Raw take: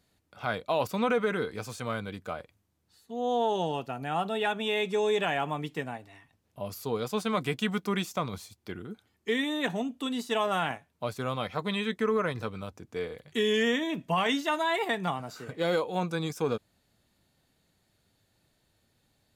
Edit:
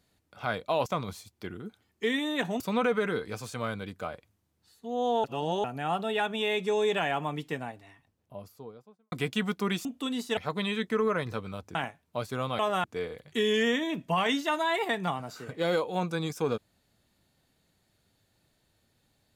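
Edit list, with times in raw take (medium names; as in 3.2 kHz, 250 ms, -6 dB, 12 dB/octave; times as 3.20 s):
3.50–3.90 s: reverse
5.91–7.38 s: studio fade out
8.11–9.85 s: move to 0.86 s
10.37–10.62 s: swap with 11.46–12.84 s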